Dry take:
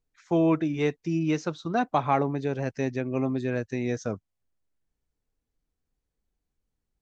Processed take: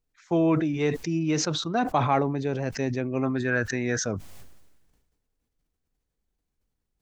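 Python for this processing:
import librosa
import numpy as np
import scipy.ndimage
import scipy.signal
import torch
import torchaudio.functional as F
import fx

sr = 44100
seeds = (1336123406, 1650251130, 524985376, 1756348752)

y = fx.peak_eq(x, sr, hz=1500.0, db=15.0, octaves=0.66, at=(3.23, 4.05))
y = fx.sustainer(y, sr, db_per_s=45.0)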